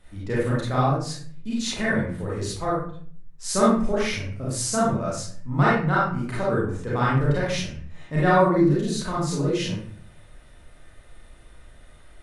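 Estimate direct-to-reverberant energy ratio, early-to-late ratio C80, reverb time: −8.0 dB, 5.0 dB, 0.50 s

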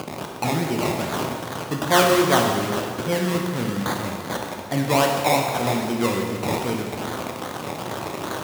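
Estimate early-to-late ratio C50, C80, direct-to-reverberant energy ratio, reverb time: 3.0 dB, 4.0 dB, 0.5 dB, 1.9 s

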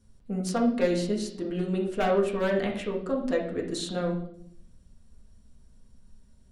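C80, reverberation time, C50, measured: 10.5 dB, 0.65 s, 7.0 dB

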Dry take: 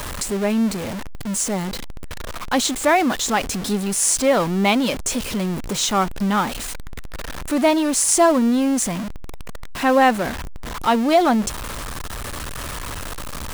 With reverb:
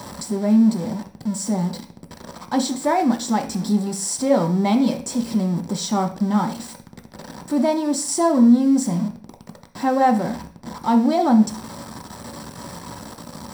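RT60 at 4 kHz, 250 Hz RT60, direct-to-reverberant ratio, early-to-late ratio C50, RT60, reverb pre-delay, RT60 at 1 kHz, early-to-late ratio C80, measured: 0.50 s, 0.55 s, 3.0 dB, 12.0 dB, 0.40 s, 3 ms, 0.40 s, 17.0 dB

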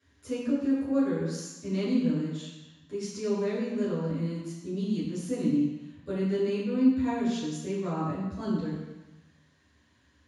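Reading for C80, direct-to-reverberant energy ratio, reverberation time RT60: 2.5 dB, −11.5 dB, 1.1 s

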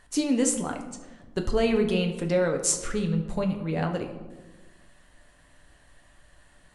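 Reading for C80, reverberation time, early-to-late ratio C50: 11.0 dB, 1.3 s, 8.5 dB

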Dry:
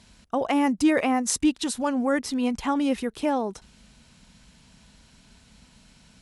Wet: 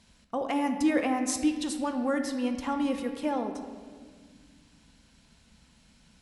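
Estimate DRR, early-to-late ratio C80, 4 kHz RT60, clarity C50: 5.0 dB, 8.5 dB, 1.2 s, 7.5 dB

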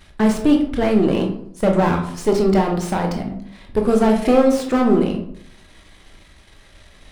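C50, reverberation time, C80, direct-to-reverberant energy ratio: 7.5 dB, 0.65 s, 10.5 dB, 2.0 dB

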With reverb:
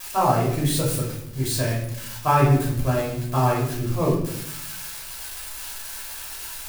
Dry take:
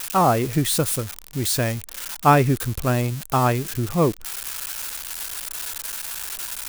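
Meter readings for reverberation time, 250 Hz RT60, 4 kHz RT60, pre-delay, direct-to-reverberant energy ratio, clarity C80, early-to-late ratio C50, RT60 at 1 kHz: 0.80 s, 1.2 s, 0.55 s, 3 ms, −5.5 dB, 7.0 dB, 3.5 dB, 0.65 s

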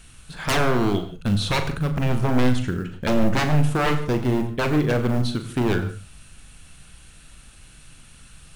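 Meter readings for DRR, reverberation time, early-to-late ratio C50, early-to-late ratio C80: 7.0 dB, non-exponential decay, 11.0 dB, 11.5 dB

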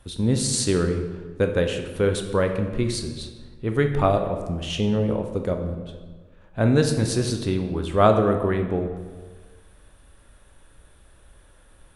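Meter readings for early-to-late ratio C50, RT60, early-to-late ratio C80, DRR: 7.5 dB, 1.5 s, 9.0 dB, 5.0 dB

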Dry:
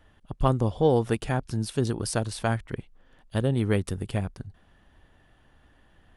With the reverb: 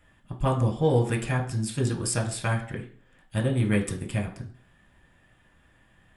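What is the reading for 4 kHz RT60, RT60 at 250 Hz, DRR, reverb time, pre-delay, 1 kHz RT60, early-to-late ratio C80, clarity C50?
0.45 s, 0.50 s, 1.5 dB, 0.45 s, 3 ms, 0.45 s, 14.5 dB, 10.5 dB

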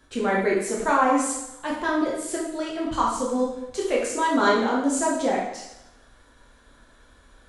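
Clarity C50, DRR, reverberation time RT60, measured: 2.5 dB, −4.5 dB, 0.90 s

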